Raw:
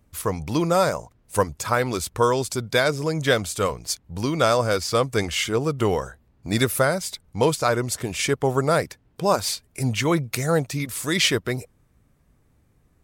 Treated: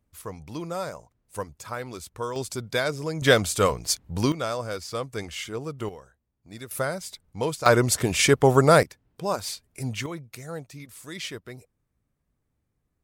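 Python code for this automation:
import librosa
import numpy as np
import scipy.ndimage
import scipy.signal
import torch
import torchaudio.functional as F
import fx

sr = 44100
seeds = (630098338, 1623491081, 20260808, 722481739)

y = fx.gain(x, sr, db=fx.steps((0.0, -12.0), (2.36, -5.5), (3.22, 2.0), (4.32, -10.0), (5.89, -19.5), (6.71, -7.5), (7.66, 4.0), (8.83, -7.0), (10.06, -15.0)))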